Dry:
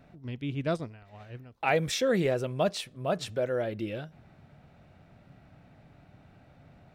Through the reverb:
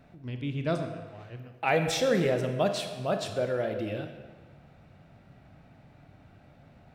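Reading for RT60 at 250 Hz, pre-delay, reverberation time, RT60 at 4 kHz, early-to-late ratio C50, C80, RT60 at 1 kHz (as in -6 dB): 1.4 s, 25 ms, 1.5 s, 1.1 s, 7.0 dB, 9.0 dB, 1.5 s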